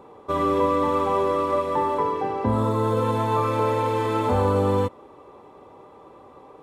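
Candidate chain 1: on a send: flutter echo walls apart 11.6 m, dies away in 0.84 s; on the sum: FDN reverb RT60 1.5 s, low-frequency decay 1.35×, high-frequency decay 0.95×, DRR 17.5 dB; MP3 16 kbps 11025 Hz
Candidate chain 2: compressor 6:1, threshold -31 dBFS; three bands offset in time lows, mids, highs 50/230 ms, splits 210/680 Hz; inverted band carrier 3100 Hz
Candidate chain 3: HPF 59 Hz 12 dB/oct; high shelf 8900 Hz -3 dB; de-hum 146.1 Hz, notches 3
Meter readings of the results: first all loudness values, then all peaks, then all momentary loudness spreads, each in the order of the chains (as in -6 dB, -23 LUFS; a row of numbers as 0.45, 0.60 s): -22.5, -32.5, -23.5 LUFS; -9.5, -22.5, -10.5 dBFS; 4, 16, 4 LU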